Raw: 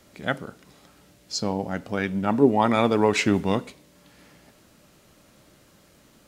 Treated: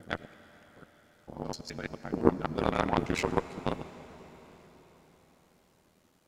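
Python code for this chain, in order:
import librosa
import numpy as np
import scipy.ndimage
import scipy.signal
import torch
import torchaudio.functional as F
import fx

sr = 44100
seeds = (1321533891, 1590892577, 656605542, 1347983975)

y = fx.block_reorder(x, sr, ms=85.0, group=5)
y = y * np.sin(2.0 * np.pi * 41.0 * np.arange(len(y)) / sr)
y = fx.cheby_harmonics(y, sr, harmonics=(3, 6), levels_db=(-13, -28), full_scale_db=-5.5)
y = fx.rev_freeverb(y, sr, rt60_s=4.9, hf_ratio=1.0, predelay_ms=40, drr_db=13.5)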